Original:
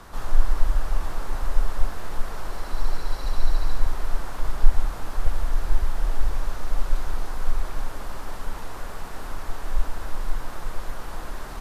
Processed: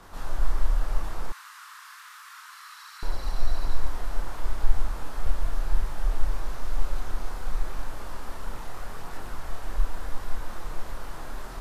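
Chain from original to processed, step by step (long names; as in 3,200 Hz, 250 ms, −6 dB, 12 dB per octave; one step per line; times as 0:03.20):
multi-voice chorus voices 2, 0.82 Hz, delay 27 ms, depth 4.6 ms
0:01.32–0:03.03: Butterworth high-pass 1,100 Hz 48 dB per octave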